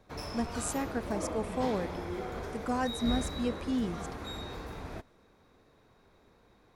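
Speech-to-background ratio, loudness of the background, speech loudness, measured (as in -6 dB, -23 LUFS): 4.5 dB, -39.0 LUFS, -34.5 LUFS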